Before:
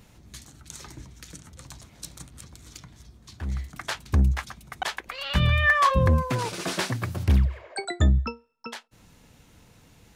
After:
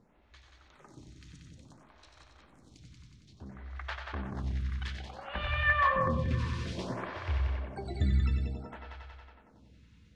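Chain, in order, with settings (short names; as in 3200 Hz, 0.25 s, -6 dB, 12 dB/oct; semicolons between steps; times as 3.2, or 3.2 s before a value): LPF 3500 Hz 12 dB/oct; multi-head echo 92 ms, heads first and second, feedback 69%, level -8 dB; on a send at -8.5 dB: reverb RT60 0.65 s, pre-delay 50 ms; on the sum: photocell phaser 0.58 Hz; gain -7 dB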